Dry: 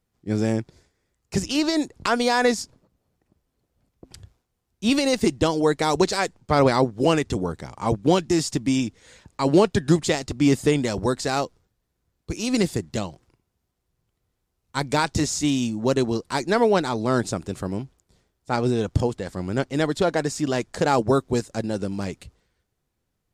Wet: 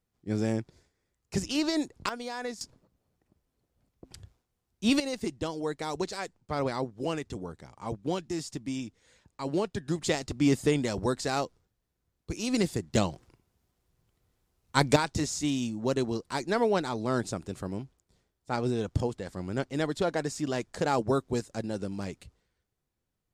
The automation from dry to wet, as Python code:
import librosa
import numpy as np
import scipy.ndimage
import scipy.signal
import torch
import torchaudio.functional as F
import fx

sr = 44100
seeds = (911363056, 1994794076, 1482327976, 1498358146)

y = fx.gain(x, sr, db=fx.steps((0.0, -6.0), (2.09, -16.5), (2.61, -4.0), (5.0, -12.5), (10.01, -5.5), (12.95, 2.0), (14.96, -7.0)))